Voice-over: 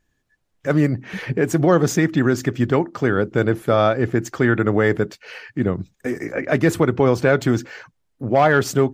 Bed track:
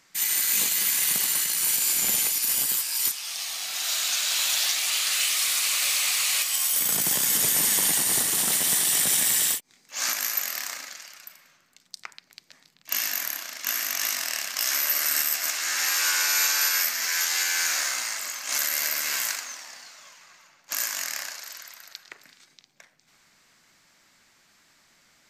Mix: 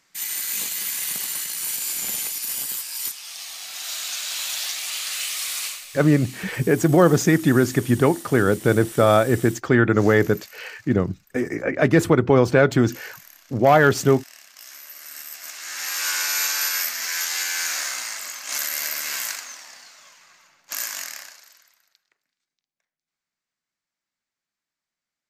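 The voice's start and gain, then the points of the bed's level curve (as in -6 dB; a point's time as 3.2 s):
5.30 s, +0.5 dB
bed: 5.66 s -3.5 dB
5.86 s -17 dB
14.94 s -17 dB
16.1 s -0.5 dB
20.98 s -0.5 dB
22.25 s -27.5 dB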